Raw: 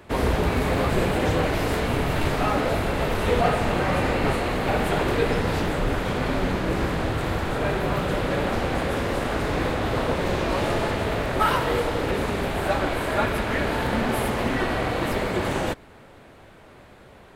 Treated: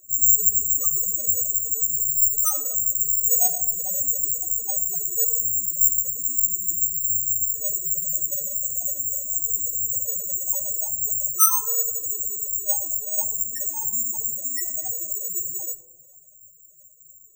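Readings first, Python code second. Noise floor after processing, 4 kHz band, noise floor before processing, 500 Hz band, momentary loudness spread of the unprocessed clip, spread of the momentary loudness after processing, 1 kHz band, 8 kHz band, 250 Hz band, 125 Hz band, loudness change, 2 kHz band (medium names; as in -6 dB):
-51 dBFS, under -15 dB, -48 dBFS, -20.0 dB, 3 LU, 8 LU, -14.0 dB, +22.0 dB, under -25 dB, -21.5 dB, +4.0 dB, under -25 dB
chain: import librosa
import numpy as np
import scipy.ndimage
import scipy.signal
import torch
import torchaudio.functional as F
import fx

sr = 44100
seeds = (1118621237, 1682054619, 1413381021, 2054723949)

y = fx.spec_topn(x, sr, count=1)
y = fx.peak_eq(y, sr, hz=310.0, db=-7.5, octaves=1.6)
y = (np.kron(y[::6], np.eye(6)[0]) * 6)[:len(y)]
y = fx.tilt_shelf(y, sr, db=-8.5, hz=670.0)
y = fx.room_shoebox(y, sr, seeds[0], volume_m3=640.0, walls='mixed', distance_m=0.41)
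y = y * librosa.db_to_amplitude(-1.5)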